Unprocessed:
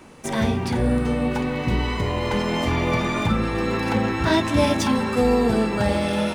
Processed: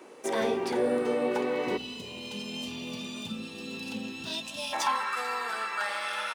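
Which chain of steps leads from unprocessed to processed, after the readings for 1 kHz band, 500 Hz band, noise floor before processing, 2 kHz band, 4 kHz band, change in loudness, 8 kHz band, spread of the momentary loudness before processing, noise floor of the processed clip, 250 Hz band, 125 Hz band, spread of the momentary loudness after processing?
-6.5 dB, -7.5 dB, -28 dBFS, -6.5 dB, -5.0 dB, -9.5 dB, -5.5 dB, 4 LU, -43 dBFS, -14.0 dB, -24.0 dB, 10 LU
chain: spectral gain 1.77–4.73, 270–2400 Hz -20 dB; high-pass sweep 400 Hz -> 1300 Hz, 4.24–5.12; frequency-shifting echo 0.442 s, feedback 44%, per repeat -54 Hz, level -23.5 dB; gain -5.5 dB

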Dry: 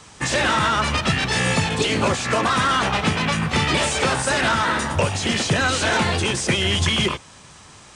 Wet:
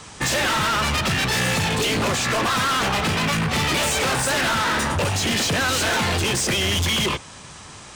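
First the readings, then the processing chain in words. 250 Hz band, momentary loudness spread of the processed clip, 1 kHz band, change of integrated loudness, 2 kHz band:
-2.0 dB, 2 LU, -1.5 dB, -0.5 dB, -0.5 dB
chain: hard clip -24 dBFS, distortion -7 dB; gain +4.5 dB

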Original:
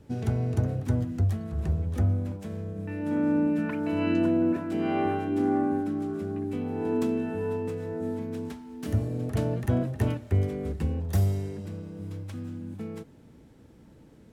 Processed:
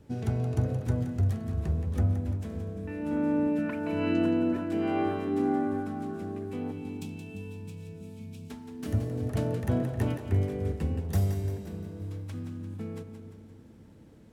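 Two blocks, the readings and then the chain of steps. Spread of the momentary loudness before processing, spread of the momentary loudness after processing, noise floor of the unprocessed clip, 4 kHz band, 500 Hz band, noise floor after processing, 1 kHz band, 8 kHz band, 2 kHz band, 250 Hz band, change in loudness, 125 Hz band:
12 LU, 15 LU, -53 dBFS, -1.0 dB, -2.5 dB, -52 dBFS, -2.5 dB, n/a, -1.5 dB, -2.5 dB, -2.0 dB, -1.5 dB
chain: spectral gain 6.72–8.5, 230–2200 Hz -18 dB; split-band echo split 350 Hz, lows 0.287 s, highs 0.173 s, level -9 dB; gain -2 dB

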